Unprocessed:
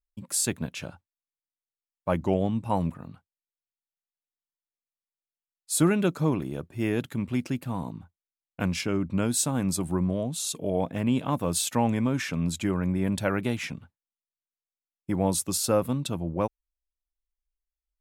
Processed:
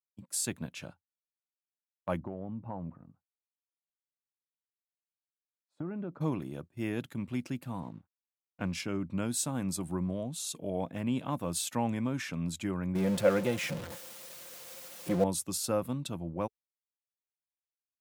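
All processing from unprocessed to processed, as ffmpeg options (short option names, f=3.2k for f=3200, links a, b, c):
-filter_complex "[0:a]asettb=1/sr,asplit=3[a][b][c];[a]atrim=end=2.204[d];[b]atrim=start=2.2:end=6.21,asetpts=PTS-STARTPTS,afade=t=in:d=0.004:c=qsin,afade=t=out:st=4.006:d=0.004:c=qsin,lowpass=1.1k,acompressor=threshold=-27dB:ratio=6:attack=3.2:release=140:knee=1:detection=peak[e];[c]atrim=start=6.206[f];[d][e]acrossfade=d=0.004:c1=hsin:c2=qsin[g];[g][f]acrossfade=d=0.004:c1=qsin:c2=hsin,asettb=1/sr,asplit=3[h][i][j];[h]atrim=end=7.804[k];[i]atrim=start=7.8:end=8.73,asetpts=PTS-STARTPTS,afade=t=in:d=0.004:c=qsin,afade=t=out:st=0.926:d=0.004:c=qsin,aemphasis=mode=reproduction:type=50fm,aeval=exprs='sgn(val(0))*max(abs(val(0))-0.00168,0)':c=same[l];[j]atrim=start=8.726[m];[k][l]acrossfade=d=0.004:c1=hsin:c2=qsin[n];[n][m]acrossfade=d=0.004:c1=qsin:c2=hsin,asettb=1/sr,asplit=3[o][p][q];[o]atrim=end=12.954[r];[p]atrim=start=12.95:end=15.24,asetpts=PTS-STARTPTS,afade=t=in:d=0.004:c=qsin,afade=t=out:st=2.286:d=0.004:c=qsin,aeval=exprs='val(0)+0.5*0.0355*sgn(val(0))':c=same,equalizer=f=520:w=4.3:g=13,aecho=1:1:5.7:0.37,atrim=end_sample=100989[s];[q]atrim=start=15.236[t];[r][s]acrossfade=d=0.004:c1=hsin:c2=qsin[u];[u][t]acrossfade=d=0.004:c1=qsin:c2=hsin,agate=range=-14dB:threshold=-39dB:ratio=16:detection=peak,highpass=82,equalizer=f=430:w=7.9:g=-4.5,volume=-6.5dB"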